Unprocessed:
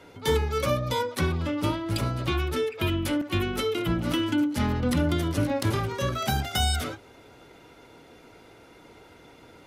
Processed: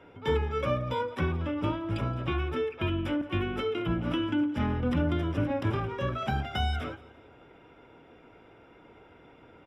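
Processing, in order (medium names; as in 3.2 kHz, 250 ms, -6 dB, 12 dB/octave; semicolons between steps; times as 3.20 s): Savitzky-Golay filter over 25 samples; band-stop 2 kHz, Q 14; feedback delay 172 ms, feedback 36%, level -20.5 dB; trim -3 dB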